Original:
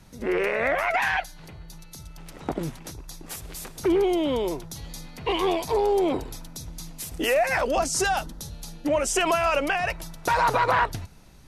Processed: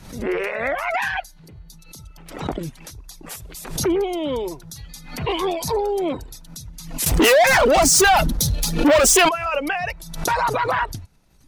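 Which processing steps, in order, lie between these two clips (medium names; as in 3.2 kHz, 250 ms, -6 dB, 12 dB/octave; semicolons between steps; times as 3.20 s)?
7.06–9.29 s: waveshaping leveller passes 5; reverb removal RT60 1.4 s; swell ahead of each attack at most 81 dB/s; trim +2 dB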